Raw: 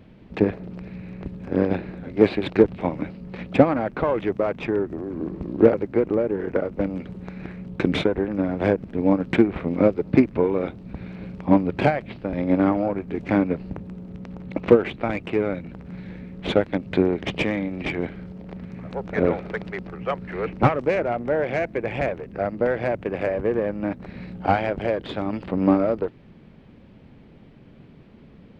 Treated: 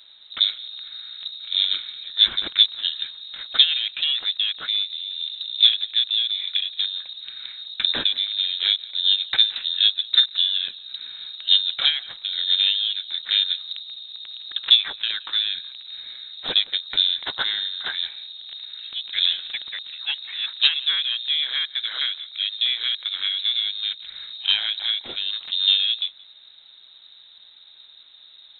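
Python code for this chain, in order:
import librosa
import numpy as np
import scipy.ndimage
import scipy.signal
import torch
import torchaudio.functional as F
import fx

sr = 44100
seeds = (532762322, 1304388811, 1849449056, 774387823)

y = x + 10.0 ** (-23.0 / 20.0) * np.pad(x, (int(173 * sr / 1000.0), 0))[:len(x)]
y = fx.freq_invert(y, sr, carrier_hz=3900)
y = y * 10.0 ** (-1.0 / 20.0)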